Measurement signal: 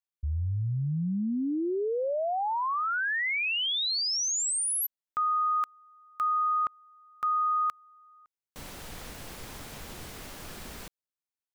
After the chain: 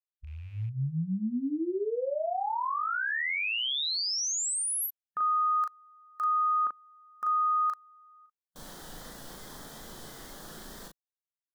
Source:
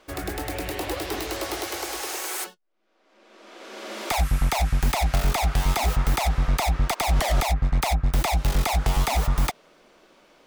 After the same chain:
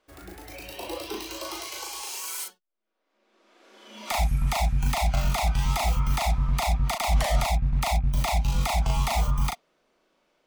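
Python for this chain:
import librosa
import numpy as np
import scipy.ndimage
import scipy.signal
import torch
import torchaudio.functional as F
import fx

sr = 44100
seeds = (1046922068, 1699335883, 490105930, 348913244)

y = fx.rattle_buzz(x, sr, strikes_db=-26.0, level_db=-34.0)
y = fx.noise_reduce_blind(y, sr, reduce_db=12)
y = fx.doubler(y, sr, ms=37.0, db=-3.0)
y = y * 10.0 ** (-3.5 / 20.0)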